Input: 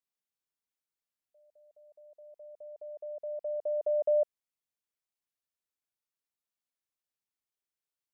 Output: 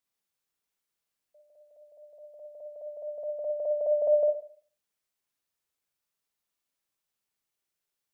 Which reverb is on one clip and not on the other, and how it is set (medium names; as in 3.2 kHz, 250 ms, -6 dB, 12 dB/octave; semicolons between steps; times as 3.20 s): Schroeder reverb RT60 0.47 s, DRR 3 dB; trim +5 dB